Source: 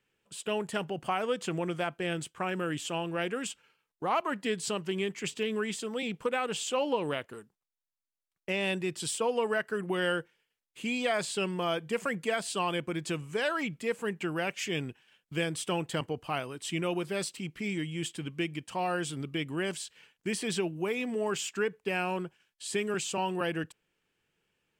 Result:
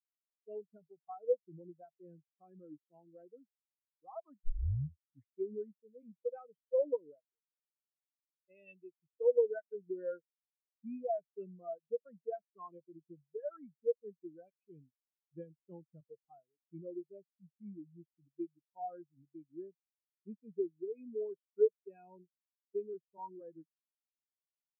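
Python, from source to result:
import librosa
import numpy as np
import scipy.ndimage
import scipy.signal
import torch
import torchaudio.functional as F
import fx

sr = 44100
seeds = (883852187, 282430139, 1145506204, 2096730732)

y = fx.tilt_shelf(x, sr, db=-3.5, hz=970.0, at=(7.36, 8.96))
y = fx.edit(y, sr, fx.tape_start(start_s=4.44, length_s=1.11), tone=tone)
y = fx.high_shelf(y, sr, hz=3000.0, db=-6.5)
y = fx.spectral_expand(y, sr, expansion=4.0)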